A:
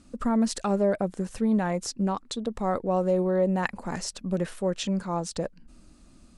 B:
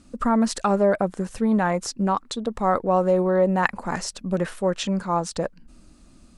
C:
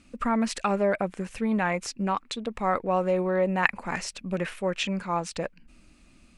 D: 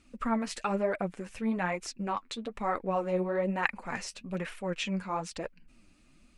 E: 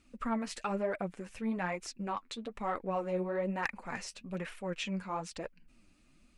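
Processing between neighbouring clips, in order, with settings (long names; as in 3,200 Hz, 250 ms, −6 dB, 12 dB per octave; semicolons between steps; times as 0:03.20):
dynamic equaliser 1,200 Hz, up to +7 dB, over −42 dBFS, Q 0.83; level +2.5 dB
parametric band 2,400 Hz +13 dB 0.8 octaves; level −5.5 dB
flanger 1.1 Hz, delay 2 ms, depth 9.5 ms, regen +32%; level −1.5 dB
soft clipping −16.5 dBFS, distortion −22 dB; level −3.5 dB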